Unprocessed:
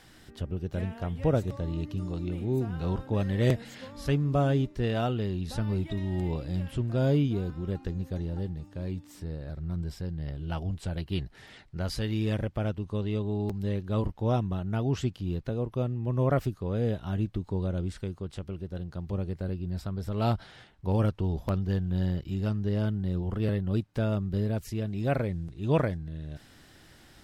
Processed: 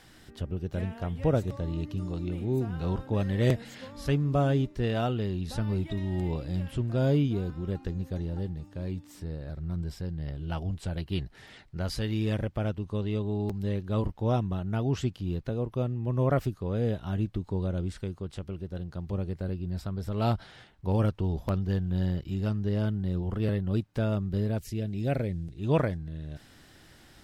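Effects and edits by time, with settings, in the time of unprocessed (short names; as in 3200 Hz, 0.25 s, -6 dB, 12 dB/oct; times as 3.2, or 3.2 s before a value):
24.59–25.58 bell 1100 Hz -11 dB 0.9 oct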